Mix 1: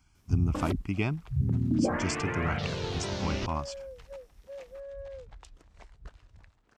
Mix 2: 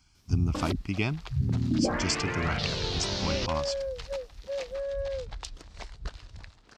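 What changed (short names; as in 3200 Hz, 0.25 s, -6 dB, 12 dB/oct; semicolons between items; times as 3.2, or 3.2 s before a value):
second sound +9.5 dB; master: add bell 4500 Hz +10 dB 1.1 oct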